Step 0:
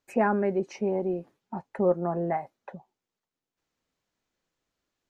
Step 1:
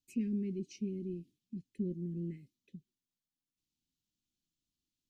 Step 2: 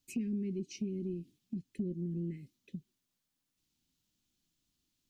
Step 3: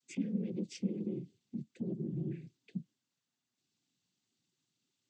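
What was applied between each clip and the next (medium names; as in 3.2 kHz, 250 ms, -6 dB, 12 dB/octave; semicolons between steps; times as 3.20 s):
inverse Chebyshev band-stop 640–1400 Hz, stop band 60 dB; trim -5 dB
compression 2.5:1, threshold -46 dBFS, peak gain reduction 10.5 dB; trim +8.5 dB
noise-vocoded speech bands 16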